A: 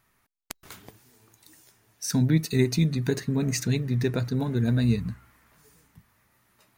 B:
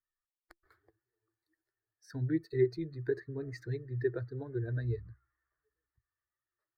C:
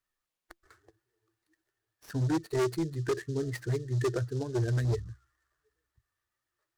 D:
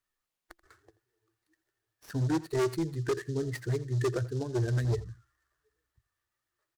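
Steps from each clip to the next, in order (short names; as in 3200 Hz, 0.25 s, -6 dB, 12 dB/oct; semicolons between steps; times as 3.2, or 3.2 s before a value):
per-bin expansion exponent 1.5; EQ curve 130 Hz 0 dB, 210 Hz -27 dB, 340 Hz +11 dB, 600 Hz -2 dB, 990 Hz -9 dB, 1800 Hz +5 dB, 2900 Hz -29 dB, 4400 Hz -8 dB, 6400 Hz -24 dB; gain -8 dB
overloaded stage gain 32 dB; noise-modulated delay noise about 5000 Hz, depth 0.033 ms; gain +7.5 dB
echo 83 ms -18.5 dB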